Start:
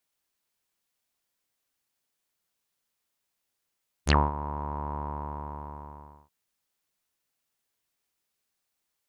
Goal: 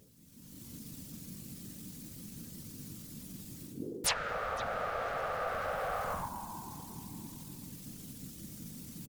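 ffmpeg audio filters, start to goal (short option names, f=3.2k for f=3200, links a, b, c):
-filter_complex "[0:a]asplit=2[a][b];[b]adelay=488,lowpass=f=880:p=1,volume=-20.5dB,asplit=2[c][d];[d]adelay=488,lowpass=f=880:p=1,volume=0.49,asplit=2[e][f];[f]adelay=488,lowpass=f=880:p=1,volume=0.49,asplit=2[g][h];[h]adelay=488,lowpass=f=880:p=1,volume=0.49[i];[c][e][g][i]amix=inputs=4:normalize=0[j];[a][j]amix=inputs=2:normalize=0,asetrate=66075,aresample=44100,atempo=0.66742,bass=f=250:g=13,treble=f=4k:g=10,aeval=exprs='val(0)+0.00447*(sin(2*PI*50*n/s)+sin(2*PI*2*50*n/s)/2+sin(2*PI*3*50*n/s)/3+sin(2*PI*4*50*n/s)/4+sin(2*PI*5*50*n/s)/5)':c=same,areverse,acompressor=threshold=-37dB:ratio=10,areverse,afreqshift=-450,equalizer=f=250:w=1.8:g=5.5,afftfilt=real='re*lt(hypot(re,im),0.00891)':imag='im*lt(hypot(re,im),0.00891)':win_size=1024:overlap=0.75,afftfilt=real='hypot(re,im)*cos(2*PI*random(0))':imag='hypot(re,im)*sin(2*PI*random(1))':win_size=512:overlap=0.75,dynaudnorm=f=150:g=7:m=16dB,volume=13.5dB"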